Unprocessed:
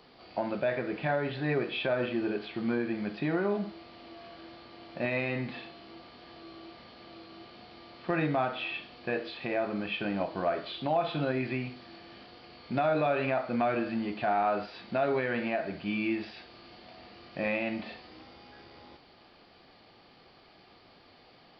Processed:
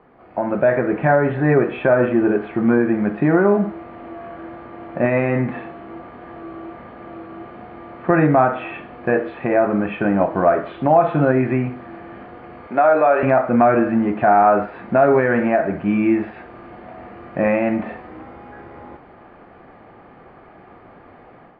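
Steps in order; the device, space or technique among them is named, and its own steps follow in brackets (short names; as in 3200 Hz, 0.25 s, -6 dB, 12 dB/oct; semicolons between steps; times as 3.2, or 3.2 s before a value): 12.67–13.23 HPF 430 Hz 12 dB/oct; action camera in a waterproof case (LPF 1800 Hz 24 dB/oct; AGC gain up to 8.5 dB; gain +6 dB; AAC 64 kbps 32000 Hz)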